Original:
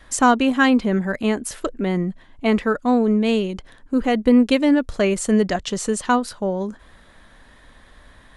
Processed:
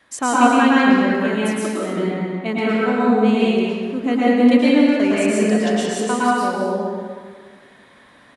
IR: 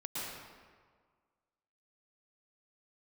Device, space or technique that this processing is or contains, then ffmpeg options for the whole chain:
stadium PA: -filter_complex "[0:a]highpass=160,equalizer=f=2300:t=o:w=0.57:g=3,aecho=1:1:180.8|247.8:0.355|0.251[s0];[1:a]atrim=start_sample=2205[s1];[s0][s1]afir=irnorm=-1:irlink=0,volume=0.891"

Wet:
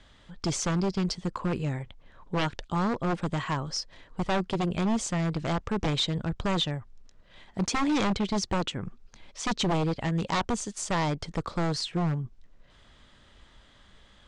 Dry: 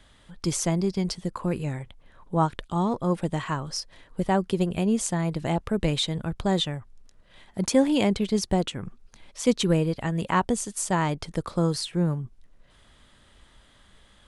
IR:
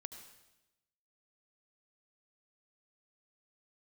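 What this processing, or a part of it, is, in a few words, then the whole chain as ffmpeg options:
synthesiser wavefolder: -af "aeval=exprs='0.0944*(abs(mod(val(0)/0.0944+3,4)-2)-1)':c=same,lowpass=f=7200:w=0.5412,lowpass=f=7200:w=1.3066"

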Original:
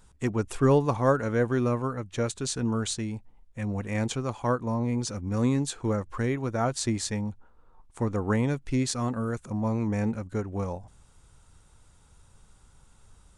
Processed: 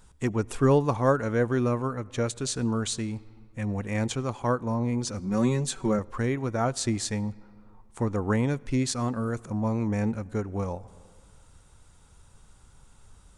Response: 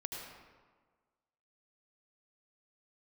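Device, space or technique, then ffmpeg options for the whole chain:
ducked reverb: -filter_complex "[0:a]asettb=1/sr,asplit=3[s0][s1][s2];[s0]atrim=end=5.194[s3];[s1]atrim=start=5.19:end=5.99,asetpts=PTS-STARTPTS,afade=t=in:d=0.004:c=qsin,afade=t=out:st=0.796:d=0.004:c=qsin,aecho=1:1:5.3:0.78,atrim=end_sample=35280[s4];[s2]atrim=start=5.986[s5];[s3][s4]acrossfade=d=0.004:c1=hsin:c2=qsin[s6];[s6][s5]acrossfade=d=0.004:c1=qsin:c2=hsin,asplit=3[s7][s8][s9];[1:a]atrim=start_sample=2205[s10];[s8][s10]afir=irnorm=-1:irlink=0[s11];[s9]apad=whole_len=589698[s12];[s11][s12]sidechaincompress=threshold=0.0178:ratio=12:attack=35:release=962,volume=0.335[s13];[s7][s13]amix=inputs=2:normalize=0"

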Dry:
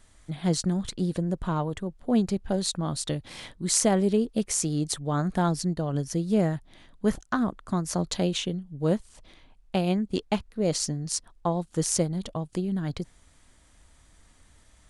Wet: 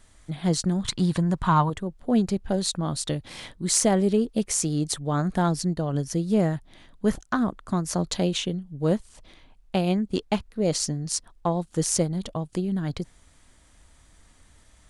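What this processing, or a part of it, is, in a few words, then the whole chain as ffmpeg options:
parallel distortion: -filter_complex "[0:a]asplit=2[s0][s1];[s1]asoftclip=type=hard:threshold=0.119,volume=0.224[s2];[s0][s2]amix=inputs=2:normalize=0,asettb=1/sr,asplit=3[s3][s4][s5];[s3]atrim=end=0.854[s6];[s4]atrim=start=0.85:end=1.7,asetpts=PTS-STARTPTS,afade=t=in:d=0.004:c=qsin,afade=t=out:st=0.846:d=0.004:c=qsin,equalizer=f=125:t=o:w=1:g=7,equalizer=f=500:t=o:w=1:g=-6,equalizer=f=1000:t=o:w=1:g=11,equalizer=f=2000:t=o:w=1:g=5,equalizer=f=4000:t=o:w=1:g=5,equalizer=f=8000:t=o:w=1:g=4[s7];[s5]atrim=start=1.696[s8];[s6][s7]acrossfade=d=0.004:c1=hsin:c2=qsin[s9];[s9][s8]acrossfade=d=0.004:c1=qsin:c2=hsin"

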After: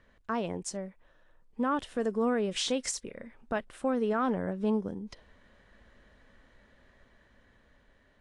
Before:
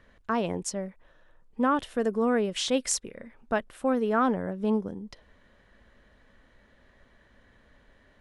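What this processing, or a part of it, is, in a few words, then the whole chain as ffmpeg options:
low-bitrate web radio: -af "dynaudnorm=f=410:g=9:m=1.68,alimiter=limit=0.158:level=0:latency=1:release=127,volume=0.596" -ar 22050 -c:a aac -b:a 48k

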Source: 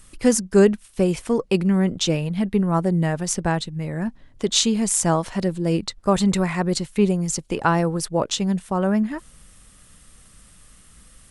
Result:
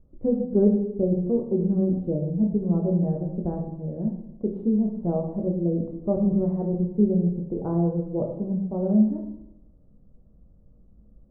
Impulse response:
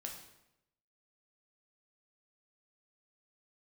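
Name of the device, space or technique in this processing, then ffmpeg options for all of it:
next room: -filter_complex "[0:a]lowpass=f=590:w=0.5412,lowpass=f=590:w=1.3066[s0];[1:a]atrim=start_sample=2205[s1];[s0][s1]afir=irnorm=-1:irlink=0"

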